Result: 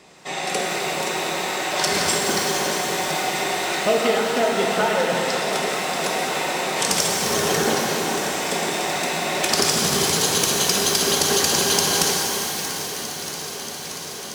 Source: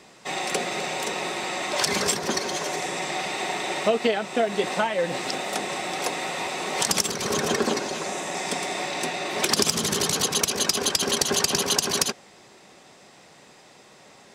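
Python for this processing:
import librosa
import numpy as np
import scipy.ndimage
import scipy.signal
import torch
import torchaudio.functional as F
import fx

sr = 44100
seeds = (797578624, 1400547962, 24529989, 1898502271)

y = fx.echo_alternate(x, sr, ms=316, hz=1600.0, feedback_pct=90, wet_db=-12.0)
y = fx.rev_shimmer(y, sr, seeds[0], rt60_s=3.1, semitones=12, shimmer_db=-8, drr_db=-1.0)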